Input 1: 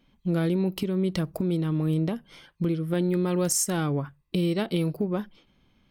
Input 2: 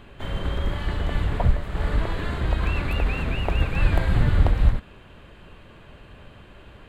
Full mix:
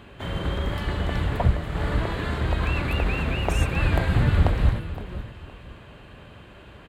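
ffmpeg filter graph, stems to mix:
ffmpeg -i stem1.wav -i stem2.wav -filter_complex "[0:a]acompressor=threshold=-29dB:ratio=6,volume=-9.5dB[link_01];[1:a]volume=1.5dB,asplit=2[link_02][link_03];[link_03]volume=-14dB,aecho=0:1:516|1032|1548|2064:1|0.31|0.0961|0.0298[link_04];[link_01][link_02][link_04]amix=inputs=3:normalize=0,highpass=53" out.wav

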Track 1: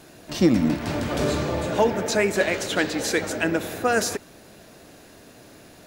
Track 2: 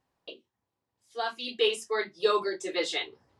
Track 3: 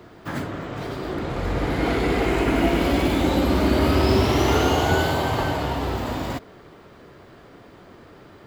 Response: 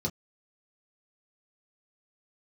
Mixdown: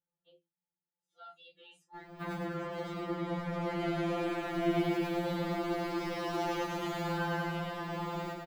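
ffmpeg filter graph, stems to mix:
-filter_complex "[1:a]alimiter=limit=-23dB:level=0:latency=1:release=10,volume=-16dB,asplit=2[link_01][link_02];[link_02]volume=-7.5dB[link_03];[2:a]asoftclip=type=tanh:threshold=-22dB,adelay=1950,volume=-3dB,asplit=2[link_04][link_05];[link_05]volume=-7dB[link_06];[link_04]alimiter=level_in=4.5dB:limit=-24dB:level=0:latency=1:release=163,volume=-4.5dB,volume=0dB[link_07];[3:a]atrim=start_sample=2205[link_08];[link_03][link_08]afir=irnorm=-1:irlink=0[link_09];[link_06]aecho=0:1:103|206|309|412|515|618|721|824:1|0.54|0.292|0.157|0.085|0.0459|0.0248|0.0134[link_10];[link_01][link_07][link_09][link_10]amix=inputs=4:normalize=0,equalizer=frequency=9300:width=0.31:gain=-7,afftfilt=real='re*2.83*eq(mod(b,8),0)':imag='im*2.83*eq(mod(b,8),0)':win_size=2048:overlap=0.75"

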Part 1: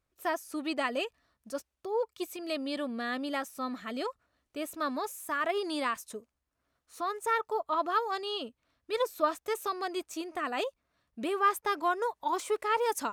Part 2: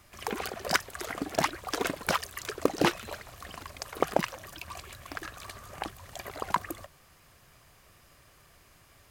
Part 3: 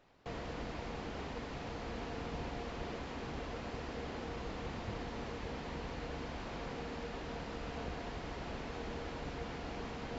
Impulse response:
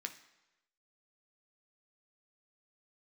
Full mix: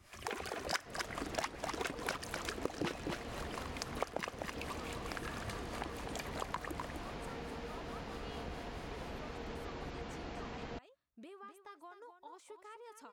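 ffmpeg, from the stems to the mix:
-filter_complex "[0:a]acompressor=threshold=-38dB:ratio=6,volume=-13dB,asplit=2[link_01][link_02];[link_02]volume=-9dB[link_03];[1:a]acrossover=split=400[link_04][link_05];[link_04]aeval=exprs='val(0)*(1-0.7/2+0.7/2*cos(2*PI*4.6*n/s))':channel_layout=same[link_06];[link_05]aeval=exprs='val(0)*(1-0.7/2-0.7/2*cos(2*PI*4.6*n/s))':channel_layout=same[link_07];[link_06][link_07]amix=inputs=2:normalize=0,volume=-1dB,asplit=3[link_08][link_09][link_10];[link_09]volume=-9dB[link_11];[link_10]volume=-7dB[link_12];[2:a]adelay=600,volume=-2dB[link_13];[3:a]atrim=start_sample=2205[link_14];[link_11][link_14]afir=irnorm=-1:irlink=0[link_15];[link_03][link_12]amix=inputs=2:normalize=0,aecho=0:1:253:1[link_16];[link_01][link_08][link_13][link_15][link_16]amix=inputs=5:normalize=0,equalizer=frequency=14000:width=2.5:gain=-14,acompressor=threshold=-37dB:ratio=3"

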